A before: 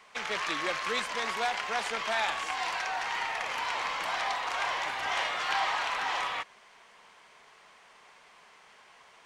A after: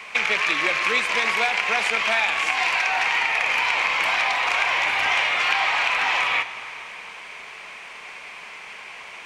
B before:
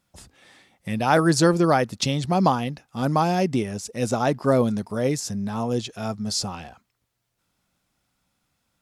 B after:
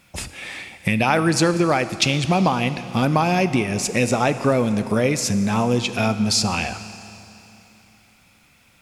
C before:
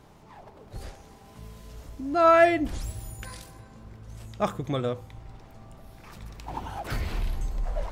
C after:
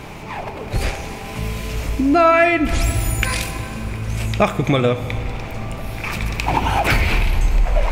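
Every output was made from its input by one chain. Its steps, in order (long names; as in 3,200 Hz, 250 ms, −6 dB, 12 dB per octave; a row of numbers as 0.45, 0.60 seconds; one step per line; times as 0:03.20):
parametric band 2,400 Hz +12 dB 0.48 octaves
downward compressor 4 to 1, threshold −33 dBFS
four-comb reverb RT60 3.1 s, combs from 25 ms, DRR 11.5 dB
loudness normalisation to −20 LKFS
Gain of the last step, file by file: +13.0, +14.5, +19.0 decibels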